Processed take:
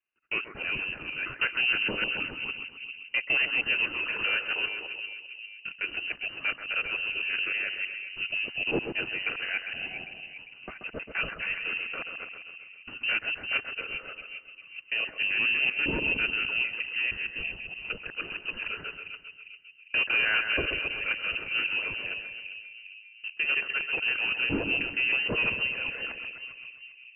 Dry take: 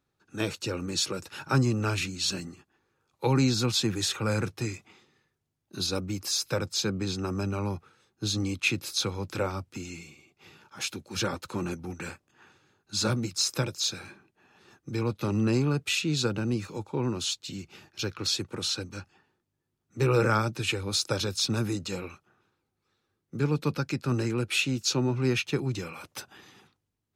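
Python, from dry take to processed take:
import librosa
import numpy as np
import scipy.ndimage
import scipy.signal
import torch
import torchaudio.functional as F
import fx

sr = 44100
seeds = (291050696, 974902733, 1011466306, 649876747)

p1 = fx.local_reverse(x, sr, ms=157.0)
p2 = fx.low_shelf(p1, sr, hz=63.0, db=-9.5)
p3 = fx.hum_notches(p2, sr, base_hz=50, count=3)
p4 = fx.leveller(p3, sr, passes=2)
p5 = p4 + fx.echo_split(p4, sr, split_hz=760.0, low_ms=401, high_ms=132, feedback_pct=52, wet_db=-7.5, dry=0)
p6 = fx.freq_invert(p5, sr, carrier_hz=2900)
y = p6 * 10.0 ** (-6.5 / 20.0)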